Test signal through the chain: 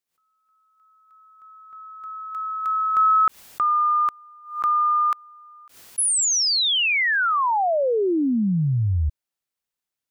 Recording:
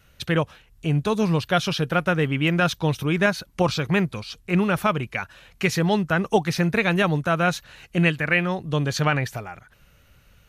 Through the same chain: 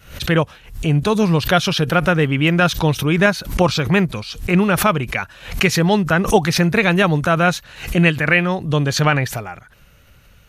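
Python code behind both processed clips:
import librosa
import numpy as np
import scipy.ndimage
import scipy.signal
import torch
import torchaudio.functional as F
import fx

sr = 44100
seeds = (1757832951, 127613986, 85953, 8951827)

y = fx.pre_swell(x, sr, db_per_s=120.0)
y = F.gain(torch.from_numpy(y), 5.5).numpy()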